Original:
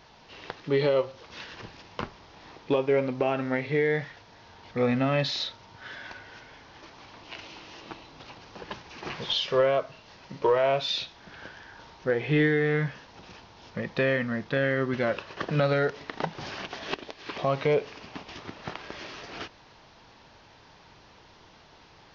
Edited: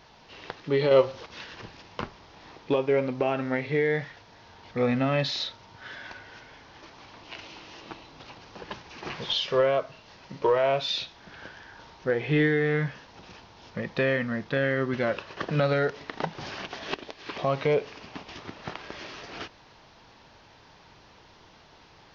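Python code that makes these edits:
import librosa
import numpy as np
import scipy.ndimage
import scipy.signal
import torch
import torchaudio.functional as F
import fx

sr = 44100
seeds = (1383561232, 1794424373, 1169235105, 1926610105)

y = fx.edit(x, sr, fx.clip_gain(start_s=0.91, length_s=0.35, db=6.0), tone=tone)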